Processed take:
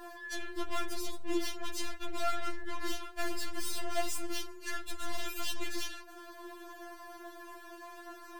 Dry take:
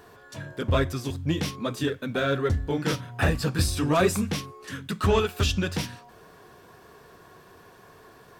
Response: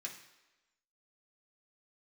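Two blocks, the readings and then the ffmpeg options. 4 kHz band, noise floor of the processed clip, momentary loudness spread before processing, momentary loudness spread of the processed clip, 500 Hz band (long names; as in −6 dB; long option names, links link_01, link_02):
−7.0 dB, −50 dBFS, 12 LU, 12 LU, −14.0 dB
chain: -af "bandreject=frequency=60:width_type=h:width=6,bandreject=frequency=120:width_type=h:width=6,aeval=exprs='(tanh(89.1*val(0)+0.55)-tanh(0.55))/89.1':channel_layout=same,afftfilt=real='re*4*eq(mod(b,16),0)':imag='im*4*eq(mod(b,16),0)':win_size=2048:overlap=0.75,volume=7dB"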